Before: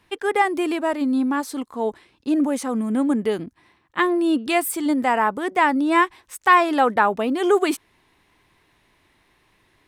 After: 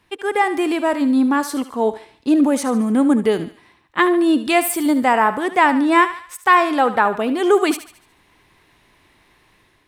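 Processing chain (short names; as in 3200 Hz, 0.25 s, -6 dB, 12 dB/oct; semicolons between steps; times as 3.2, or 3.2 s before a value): AGC gain up to 5.5 dB; on a send: thinning echo 73 ms, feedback 47%, high-pass 570 Hz, level -12 dB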